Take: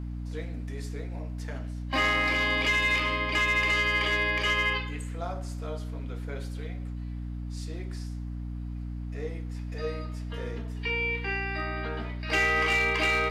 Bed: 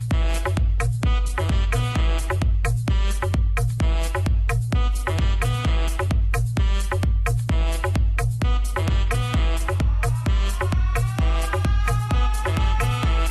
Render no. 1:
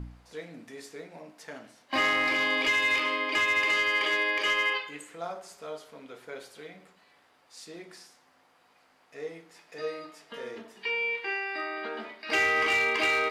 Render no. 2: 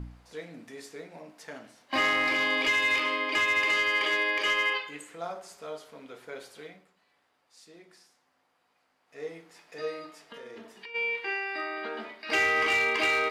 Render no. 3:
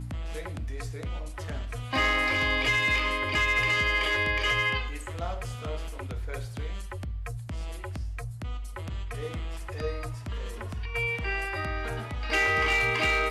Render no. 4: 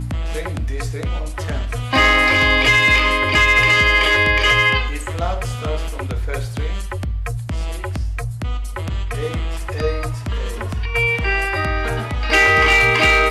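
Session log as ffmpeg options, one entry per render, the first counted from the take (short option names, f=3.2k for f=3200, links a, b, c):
-af "bandreject=f=60:t=h:w=4,bandreject=f=120:t=h:w=4,bandreject=f=180:t=h:w=4,bandreject=f=240:t=h:w=4,bandreject=f=300:t=h:w=4"
-filter_complex "[0:a]asplit=3[a][b][c];[a]afade=t=out:st=10.2:d=0.02[d];[b]acompressor=threshold=-40dB:ratio=12:attack=3.2:release=140:knee=1:detection=peak,afade=t=in:st=10.2:d=0.02,afade=t=out:st=10.94:d=0.02[e];[c]afade=t=in:st=10.94:d=0.02[f];[d][e][f]amix=inputs=3:normalize=0,asplit=3[g][h][i];[g]atrim=end=6.85,asetpts=PTS-STARTPTS,afade=t=out:st=6.66:d=0.19:silence=0.375837[j];[h]atrim=start=6.85:end=9.05,asetpts=PTS-STARTPTS,volume=-8.5dB[k];[i]atrim=start=9.05,asetpts=PTS-STARTPTS,afade=t=in:d=0.19:silence=0.375837[l];[j][k][l]concat=n=3:v=0:a=1"
-filter_complex "[1:a]volume=-14.5dB[a];[0:a][a]amix=inputs=2:normalize=0"
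-af "volume=11.5dB"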